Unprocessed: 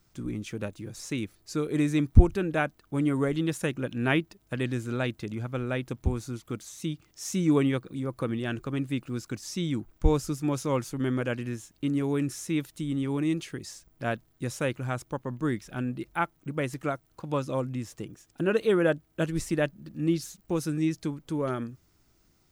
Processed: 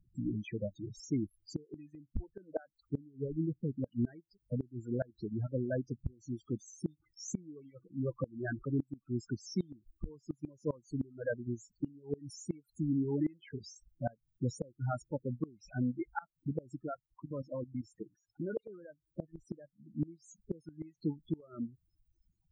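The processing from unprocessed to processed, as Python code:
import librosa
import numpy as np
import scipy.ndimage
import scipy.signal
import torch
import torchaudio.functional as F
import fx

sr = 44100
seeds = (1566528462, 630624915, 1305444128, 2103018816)

y = fx.dereverb_blind(x, sr, rt60_s=1.3)
y = fx.gaussian_blur(y, sr, sigma=22.0, at=(3.01, 3.77))
y = fx.level_steps(y, sr, step_db=18, at=(16.8, 18.57))
y = fx.spec_topn(y, sr, count=8)
y = fx.gate_flip(y, sr, shuts_db=-23.0, range_db=-26)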